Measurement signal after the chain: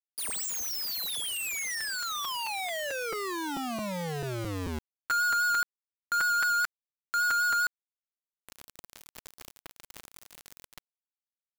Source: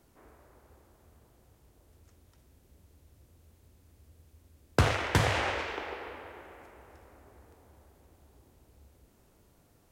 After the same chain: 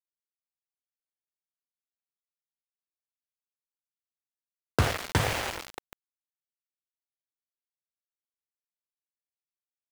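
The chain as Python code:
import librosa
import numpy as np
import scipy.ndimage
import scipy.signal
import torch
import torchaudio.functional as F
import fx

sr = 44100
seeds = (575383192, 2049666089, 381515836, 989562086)

y = fx.vibrato(x, sr, rate_hz=5.0, depth_cents=25.0)
y = np.where(np.abs(y) >= 10.0 ** (-28.0 / 20.0), y, 0.0)
y = fx.buffer_crackle(y, sr, first_s=0.48, period_s=0.22, block=256, kind='repeat')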